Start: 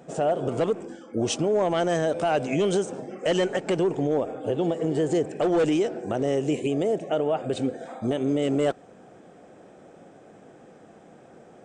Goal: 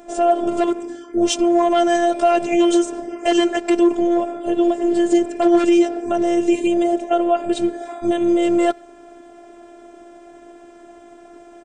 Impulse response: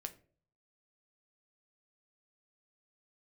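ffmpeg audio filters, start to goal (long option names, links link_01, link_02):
-filter_complex "[0:a]asplit=2[link_01][link_02];[link_02]adelay=90,highpass=300,lowpass=3400,asoftclip=type=hard:threshold=-24.5dB,volume=-28dB[link_03];[link_01][link_03]amix=inputs=2:normalize=0,afftfilt=real='hypot(re,im)*cos(PI*b)':imag='0':win_size=512:overlap=0.75,acontrast=58,volume=4.5dB"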